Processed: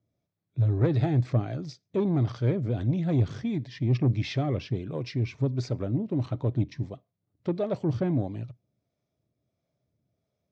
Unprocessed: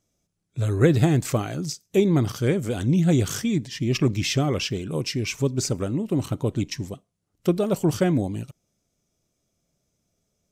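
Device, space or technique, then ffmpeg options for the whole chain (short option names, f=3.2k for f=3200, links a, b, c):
guitar amplifier with harmonic tremolo: -filter_complex "[0:a]acrossover=split=450[a][b];[a]aeval=exprs='val(0)*(1-0.5/2+0.5/2*cos(2*PI*1.5*n/s))':c=same[c];[b]aeval=exprs='val(0)*(1-0.5/2-0.5/2*cos(2*PI*1.5*n/s))':c=same[d];[c][d]amix=inputs=2:normalize=0,asoftclip=type=tanh:threshold=-17dB,highpass=78,equalizer=f=79:t=q:w=4:g=6,equalizer=f=120:t=q:w=4:g=10,equalizer=f=290:t=q:w=4:g=3,equalizer=f=630:t=q:w=4:g=5,equalizer=f=1.4k:t=q:w=4:g=-3,equalizer=f=2.9k:t=q:w=4:g=-8,lowpass=f=4.1k:w=0.5412,lowpass=f=4.1k:w=1.3066,volume=-3.5dB"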